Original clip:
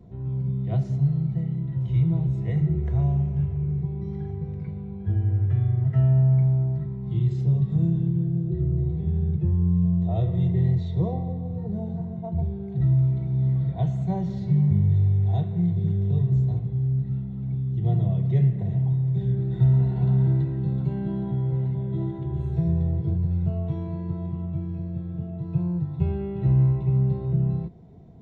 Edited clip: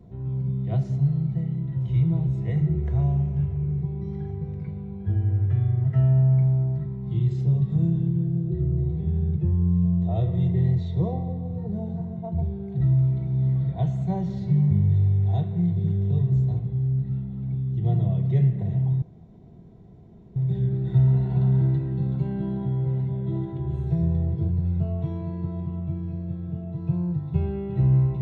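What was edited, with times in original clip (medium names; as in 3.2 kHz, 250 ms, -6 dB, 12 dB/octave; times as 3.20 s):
19.02 s: insert room tone 1.34 s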